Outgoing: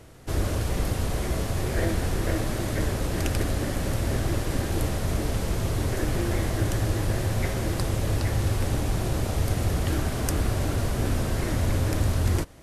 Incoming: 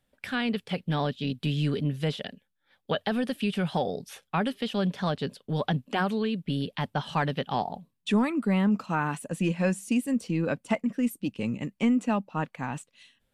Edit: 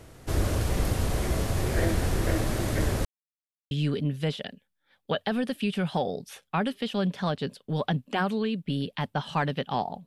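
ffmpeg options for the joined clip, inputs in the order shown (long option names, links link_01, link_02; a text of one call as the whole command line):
ffmpeg -i cue0.wav -i cue1.wav -filter_complex "[0:a]apad=whole_dur=10.06,atrim=end=10.06,asplit=2[link_01][link_02];[link_01]atrim=end=3.05,asetpts=PTS-STARTPTS,afade=type=out:start_time=3.046:duration=0.004:curve=hsin[link_03];[link_02]atrim=start=3.05:end=3.71,asetpts=PTS-STARTPTS,volume=0[link_04];[1:a]atrim=start=1.51:end=7.86,asetpts=PTS-STARTPTS,afade=type=in:duration=0.004:curve=hsin[link_05];[link_03][link_04][link_05]concat=n=3:v=0:a=1" out.wav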